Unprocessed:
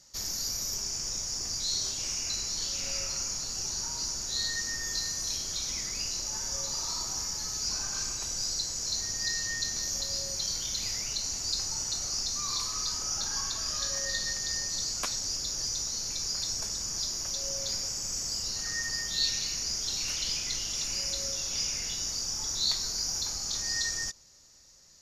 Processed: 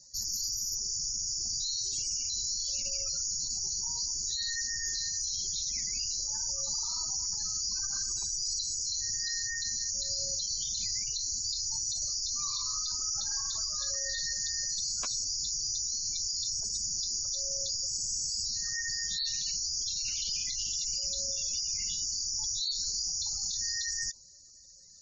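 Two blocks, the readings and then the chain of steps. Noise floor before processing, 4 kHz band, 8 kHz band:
−36 dBFS, −1.5 dB, +0.5 dB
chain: gate on every frequency bin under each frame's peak −15 dB strong
high-shelf EQ 7,200 Hz +12 dB
brickwall limiter −22.5 dBFS, peak gain reduction 8.5 dB
level −1.5 dB

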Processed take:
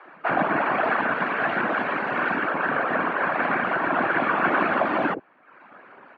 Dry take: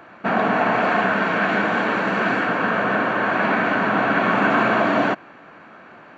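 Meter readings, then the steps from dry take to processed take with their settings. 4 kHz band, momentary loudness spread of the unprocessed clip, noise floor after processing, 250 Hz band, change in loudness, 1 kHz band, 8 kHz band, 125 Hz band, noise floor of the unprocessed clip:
−8.0 dB, 3 LU, −52 dBFS, −6.5 dB, −4.0 dB, −3.0 dB, can't be measured, −8.0 dB, −45 dBFS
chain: reverb reduction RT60 0.88 s
random phases in short frames
band-pass filter 240–2,500 Hz
multiband delay without the direct sound highs, lows 50 ms, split 460 Hz

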